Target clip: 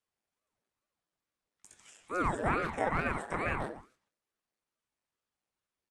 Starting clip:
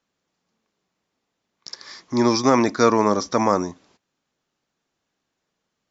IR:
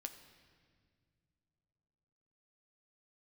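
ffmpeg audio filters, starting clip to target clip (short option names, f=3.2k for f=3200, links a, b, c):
-filter_complex "[0:a]acrossover=split=180|740|1200[a][b][c][d];[d]acompressor=threshold=-38dB:ratio=6[e];[a][b][c][e]amix=inputs=4:normalize=0,asplit=2[f][g];[g]adelay=140,highpass=300,lowpass=3.4k,asoftclip=type=hard:threshold=-15.5dB,volume=-8dB[h];[f][h]amix=inputs=2:normalize=0,asetrate=66075,aresample=44100,atempo=0.66742[i];[1:a]atrim=start_sample=2205,atrim=end_sample=3969[j];[i][j]afir=irnorm=-1:irlink=0,aeval=exprs='val(0)*sin(2*PI*480*n/s+480*0.9/2.3*sin(2*PI*2.3*n/s))':c=same,volume=-6.5dB"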